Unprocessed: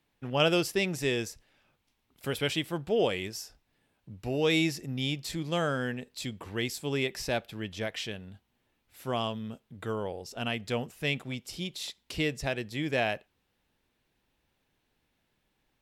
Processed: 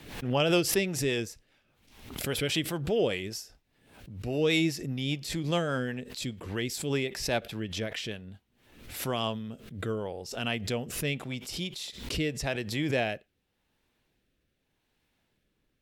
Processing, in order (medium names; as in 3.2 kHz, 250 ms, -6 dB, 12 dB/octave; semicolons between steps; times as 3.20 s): rotary cabinet horn 5 Hz, later 0.85 Hz, at 8.16 s; swell ahead of each attack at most 76 dB/s; trim +2 dB